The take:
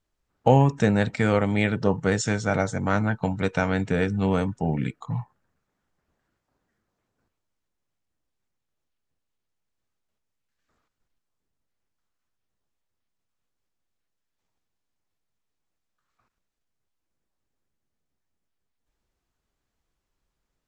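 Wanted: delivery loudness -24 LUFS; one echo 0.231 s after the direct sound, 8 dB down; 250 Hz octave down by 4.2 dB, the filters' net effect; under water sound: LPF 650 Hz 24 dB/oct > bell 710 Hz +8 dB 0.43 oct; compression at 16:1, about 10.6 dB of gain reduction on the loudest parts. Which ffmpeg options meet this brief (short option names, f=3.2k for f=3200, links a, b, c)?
-af "equalizer=f=250:t=o:g=-6,acompressor=threshold=-23dB:ratio=16,lowpass=f=650:w=0.5412,lowpass=f=650:w=1.3066,equalizer=f=710:t=o:w=0.43:g=8,aecho=1:1:231:0.398,volume=6.5dB"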